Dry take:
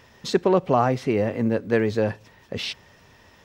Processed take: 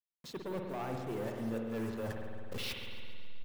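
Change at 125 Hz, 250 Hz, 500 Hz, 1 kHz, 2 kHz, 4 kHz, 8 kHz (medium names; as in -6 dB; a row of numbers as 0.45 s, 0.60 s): -14.5 dB, -14.5 dB, -17.5 dB, -18.0 dB, -14.0 dB, -11.0 dB, no reading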